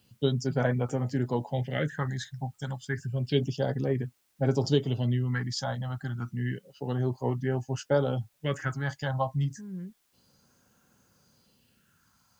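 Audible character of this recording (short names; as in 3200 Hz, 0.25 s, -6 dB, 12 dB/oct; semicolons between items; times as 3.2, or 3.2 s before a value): phasing stages 4, 0.3 Hz, lowest notch 380–3900 Hz; a quantiser's noise floor 12-bit, dither triangular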